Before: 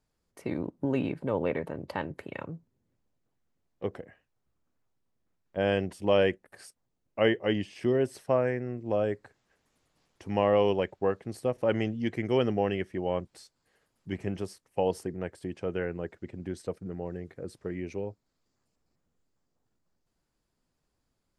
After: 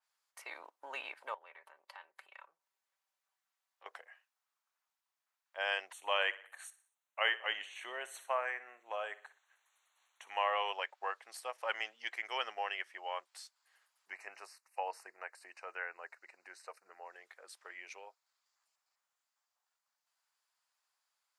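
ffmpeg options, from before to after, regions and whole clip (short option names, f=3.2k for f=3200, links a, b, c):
-filter_complex "[0:a]asettb=1/sr,asplit=3[a][b][c];[a]atrim=end=1.344[d];[b]atrim=start=1.34:end=3.86,asetpts=PTS-STARTPTS,afade=t=in:d=0.004:c=qsin,afade=t=out:st=2.516:d=0.004:c=qsin,acompressor=threshold=-52dB:ratio=2.5:attack=3.2:release=140:knee=1:detection=peak,aecho=1:1:5.2:0.41,atrim=end_sample=111132[e];[c]atrim=start=3.856[f];[d][e]acrossfade=d=0.004:c1=hsin:c2=qsin[g];[g][f]acrossfade=d=0.004:c1=qsin:c2=hsin,asettb=1/sr,asplit=3[h][i][j];[h]atrim=end=5.924[k];[i]atrim=start=5.92:end=10.73,asetpts=PTS-STARTPTS,afade=t=in:d=0.004:c=qsin,afade=t=out:st=4.806:d=0.004:c=qsin,asuperstop=centerf=5000:order=8:qfactor=3.3,aecho=1:1:61|122|183|244:0.141|0.0678|0.0325|0.0156,atrim=end_sample=212121[l];[j]atrim=start=10.726[m];[k][l]acrossfade=d=0.004:c1=hsin:c2=qsin[n];[n][m]acrossfade=d=0.004:c1=qsin:c2=hsin,asettb=1/sr,asplit=3[o][p][q];[o]atrim=end=14.094[r];[p]atrim=start=14.09:end=17.13,asetpts=PTS-STARTPTS,afade=t=in:d=0.004:c=qsin,afade=t=out:st=3.036:d=0.004:c=qsin,acrossover=split=2900[s][t];[t]acompressor=threshold=-57dB:ratio=4:attack=1:release=60[u];[s][u]amix=inputs=2:normalize=0,asuperstop=centerf=3300:order=4:qfactor=2.8[v];[q]atrim=start=17.126[w];[r][v]acrossfade=d=0.004:c1=hsin:c2=qsin[x];[x][w]acrossfade=d=0.004:c1=qsin:c2=hsin,highpass=f=880:w=0.5412,highpass=f=880:w=1.3066,adynamicequalizer=threshold=0.00398:dfrequency=4000:dqfactor=0.7:tfrequency=4000:tqfactor=0.7:attack=5:release=100:ratio=0.375:range=2:mode=cutabove:tftype=highshelf,volume=1dB"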